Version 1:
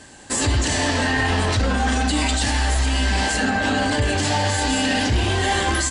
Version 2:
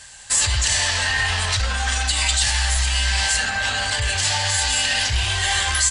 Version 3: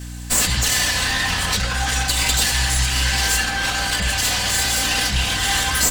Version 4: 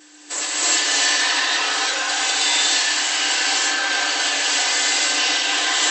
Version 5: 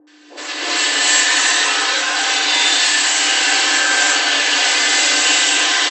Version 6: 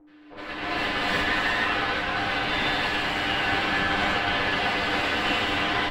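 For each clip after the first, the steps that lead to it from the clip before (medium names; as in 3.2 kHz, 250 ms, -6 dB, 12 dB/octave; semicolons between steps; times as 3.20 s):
amplifier tone stack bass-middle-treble 10-0-10; trim +6.5 dB
comb filter that takes the minimum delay 4 ms; hum 60 Hz, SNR 12 dB; trim +2.5 dB
gated-style reverb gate 370 ms rising, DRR -7.5 dB; FFT band-pass 260–8100 Hz; trim -6.5 dB
level rider gain up to 5 dB; three bands offset in time lows, mids, highs 70/450 ms, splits 790/5400 Hz; trim +2.5 dB
comb filter that takes the minimum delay 9.9 ms; distance through air 450 m; trim -1.5 dB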